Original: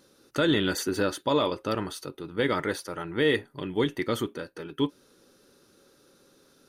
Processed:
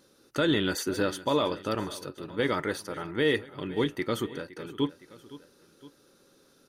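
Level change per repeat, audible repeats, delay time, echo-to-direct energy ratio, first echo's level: −4.5 dB, 2, 513 ms, −16.5 dB, −17.5 dB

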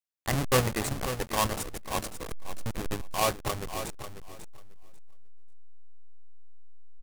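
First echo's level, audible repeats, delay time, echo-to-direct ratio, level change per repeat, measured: −10.0 dB, 2, 543 ms, −10.0 dB, −15.0 dB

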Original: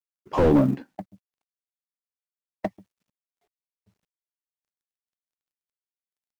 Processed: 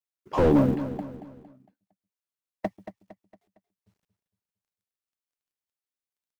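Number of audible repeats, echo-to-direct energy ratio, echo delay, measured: 4, −10.5 dB, 229 ms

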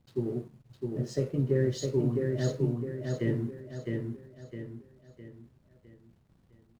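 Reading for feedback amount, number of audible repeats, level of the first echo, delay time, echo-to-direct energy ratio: 42%, 5, −3.5 dB, 659 ms, −2.5 dB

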